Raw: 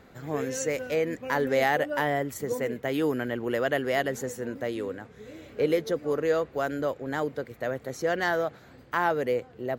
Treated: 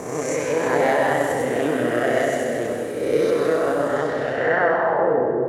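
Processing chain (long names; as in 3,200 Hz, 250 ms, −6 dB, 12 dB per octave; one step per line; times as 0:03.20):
peak hold with a rise ahead of every peak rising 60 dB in 2.25 s
high-pass filter 67 Hz
high-shelf EQ 2,600 Hz −10 dB
background noise blue −53 dBFS
low-pass filter sweep 9,900 Hz → 390 Hz, 0:06.78–0:09.23
echo through a band-pass that steps 290 ms, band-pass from 3,800 Hz, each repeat 0.7 octaves, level −7 dB
time stretch by overlap-add 0.56×, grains 64 ms
on a send at −1 dB: convolution reverb RT60 1.7 s, pre-delay 60 ms
on the sum: level +2.5 dB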